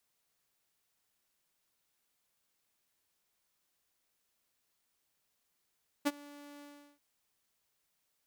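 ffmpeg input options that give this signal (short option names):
-f lavfi -i "aevalsrc='0.0708*(2*mod(289*t,1)-1)':d=0.939:s=44100,afade=t=in:d=0.021,afade=t=out:st=0.021:d=0.036:silence=0.0631,afade=t=out:st=0.57:d=0.369"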